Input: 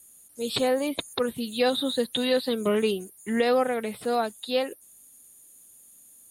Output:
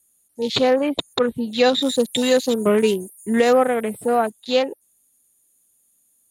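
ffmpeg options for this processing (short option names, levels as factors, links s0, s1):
-filter_complex "[0:a]afwtdn=0.0141,asettb=1/sr,asplit=3[s0][s1][s2];[s0]atrim=end=1.824[s3];[s1]atrim=start=1.82:end=4.3,asetpts=PTS-STARTPTS,afade=t=in:d=0.004:c=qsin,afade=t=out:st=2.476:d=0.004:c=qsin,highshelf=f=6300:t=q:w=1.5:g=13[s4];[s2]atrim=start=4.296[s5];[s3][s4]acrossfade=d=0.004:c1=hsin:c2=qsin[s6];[s6][s5]acrossfade=d=0.004:c1=qsin:c2=hsin,volume=2.24"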